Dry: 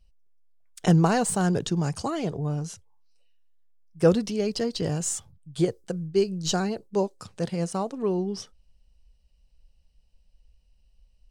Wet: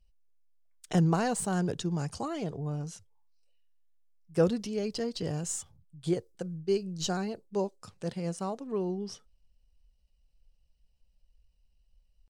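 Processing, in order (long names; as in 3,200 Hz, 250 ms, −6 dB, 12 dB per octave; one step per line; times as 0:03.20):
tempo change 0.92×
level −6 dB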